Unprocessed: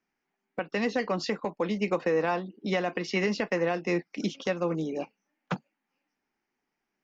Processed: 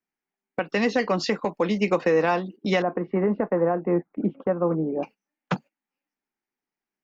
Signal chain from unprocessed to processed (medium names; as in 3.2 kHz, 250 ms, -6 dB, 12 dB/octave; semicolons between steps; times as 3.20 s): 2.82–5.03 s: low-pass 1.3 kHz 24 dB/octave; gate -45 dBFS, range -14 dB; trim +5.5 dB